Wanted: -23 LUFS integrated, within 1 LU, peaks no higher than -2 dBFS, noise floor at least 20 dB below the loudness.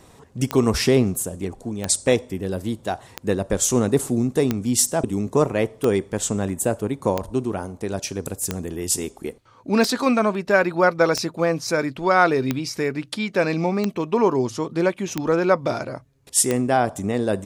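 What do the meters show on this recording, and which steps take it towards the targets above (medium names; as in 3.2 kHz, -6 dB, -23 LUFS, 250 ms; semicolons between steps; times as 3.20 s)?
clicks found 13; loudness -22.0 LUFS; peak level -3.0 dBFS; loudness target -23.0 LUFS
-> de-click; trim -1 dB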